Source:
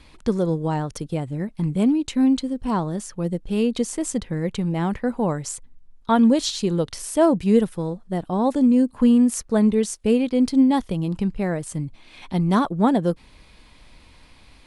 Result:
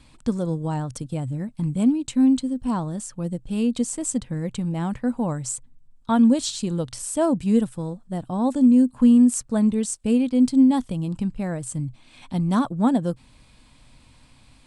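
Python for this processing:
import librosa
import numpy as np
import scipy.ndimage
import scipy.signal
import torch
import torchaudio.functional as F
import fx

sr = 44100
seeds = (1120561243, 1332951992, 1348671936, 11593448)

y = fx.graphic_eq_31(x, sr, hz=(125, 250, 400, 2000, 8000), db=(12, 6, -7, -4, 10))
y = F.gain(torch.from_numpy(y), -4.0).numpy()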